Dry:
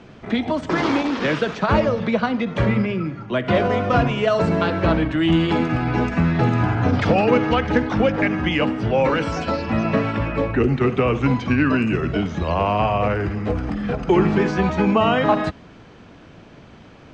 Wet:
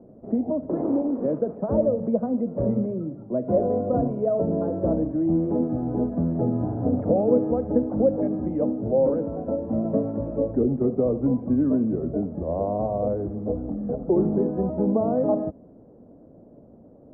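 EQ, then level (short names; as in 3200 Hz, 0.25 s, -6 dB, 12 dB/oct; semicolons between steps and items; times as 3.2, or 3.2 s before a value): ladder low-pass 660 Hz, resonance 55%; bell 250 Hz +7.5 dB 0.75 oct; 0.0 dB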